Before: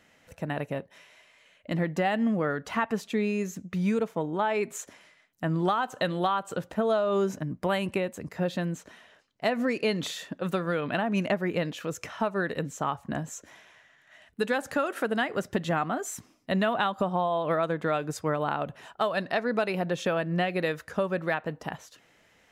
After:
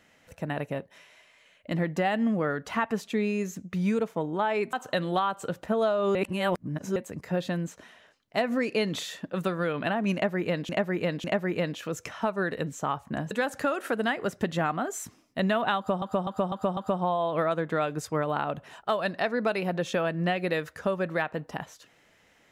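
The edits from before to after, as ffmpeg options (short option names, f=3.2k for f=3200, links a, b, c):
-filter_complex "[0:a]asplit=11[a][b][c][d][e][f][g][h][i][j][k];[a]atrim=end=4.732[l];[b]atrim=start=5.808:end=7.232[m];[c]atrim=start=7.228:end=8.042,asetpts=PTS-STARTPTS,areverse[n];[d]atrim=start=8.038:end=11.772[o];[e]atrim=start=11.218:end=11.772[p];[f]atrim=start=11.218:end=13.292[q];[g]atrim=start=14.428:end=17.142[r];[h]atrim=start=16.888:end=17.142[s];[i]atrim=start=16.888:end=17.142[t];[j]atrim=start=16.888:end=17.142[u];[k]atrim=start=16.888[v];[l][m]acrossfade=d=0.004:c1=hsin:c2=hsin[w];[w][n]acrossfade=d=0.004:c1=hsin:c2=hsin[x];[x][o]acrossfade=d=0.004:c1=hsin:c2=hsin[y];[y][p]acrossfade=d=0.004:c1=hsin:c2=hsin[z];[z][q]acrossfade=d=0.004:c1=hsin:c2=hsin[aa];[aa][r]acrossfade=d=0.004:c1=hsin:c2=hsin[ab];[ab][s]acrossfade=d=0.004:c1=hsin:c2=hsin[ac];[ac][t]acrossfade=d=0.004:c1=hsin:c2=hsin[ad];[ad][u]acrossfade=d=0.004:c1=hsin:c2=hsin[ae];[ae][v]acrossfade=d=0.004:c1=hsin:c2=hsin"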